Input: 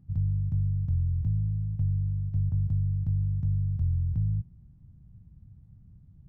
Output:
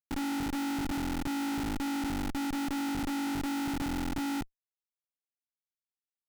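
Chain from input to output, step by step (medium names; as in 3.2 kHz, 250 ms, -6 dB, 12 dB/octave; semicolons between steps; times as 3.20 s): spectral peaks clipped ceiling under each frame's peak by 26 dB; vocoder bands 8, saw 280 Hz; Schmitt trigger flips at -31.5 dBFS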